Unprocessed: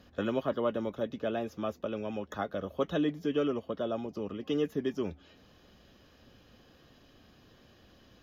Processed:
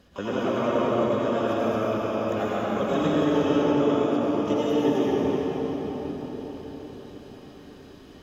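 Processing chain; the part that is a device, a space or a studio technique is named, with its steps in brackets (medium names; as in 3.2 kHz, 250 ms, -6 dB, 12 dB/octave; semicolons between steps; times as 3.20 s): shimmer-style reverb (harmony voices +12 st -10 dB; reverberation RT60 5.6 s, pre-delay 79 ms, DRR -8 dB)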